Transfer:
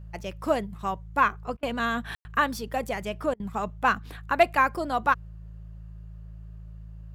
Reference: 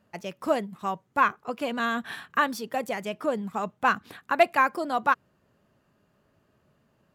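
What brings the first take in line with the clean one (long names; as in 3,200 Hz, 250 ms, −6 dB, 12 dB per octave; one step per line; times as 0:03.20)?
hum removal 54.1 Hz, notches 3
ambience match 0:02.15–0:02.25
repair the gap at 0:01.57/0:03.34, 57 ms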